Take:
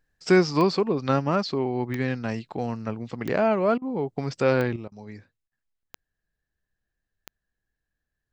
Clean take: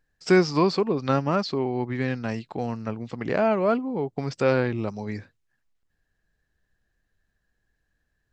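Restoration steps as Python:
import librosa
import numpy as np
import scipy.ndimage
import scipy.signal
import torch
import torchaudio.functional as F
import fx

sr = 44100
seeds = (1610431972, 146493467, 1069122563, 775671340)

y = fx.fix_declick_ar(x, sr, threshold=10.0)
y = fx.fix_interpolate(y, sr, at_s=(3.78, 4.88, 5.48), length_ms=37.0)
y = fx.fix_level(y, sr, at_s=4.76, step_db=9.0)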